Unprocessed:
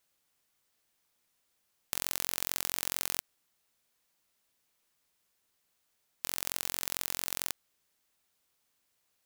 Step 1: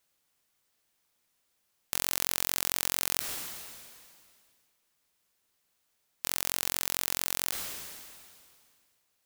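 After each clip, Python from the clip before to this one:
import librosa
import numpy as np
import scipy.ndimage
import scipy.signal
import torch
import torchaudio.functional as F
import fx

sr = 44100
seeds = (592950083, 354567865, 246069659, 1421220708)

y = fx.sustainer(x, sr, db_per_s=27.0)
y = y * 10.0 ** (1.0 / 20.0)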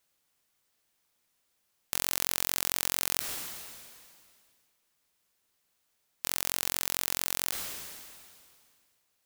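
y = x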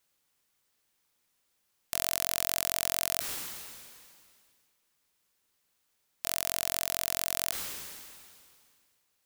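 y = fx.notch(x, sr, hz=670.0, q=12.0)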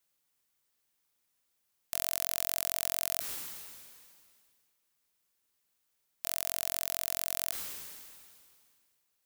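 y = fx.high_shelf(x, sr, hz=9200.0, db=5.0)
y = y * 10.0 ** (-5.5 / 20.0)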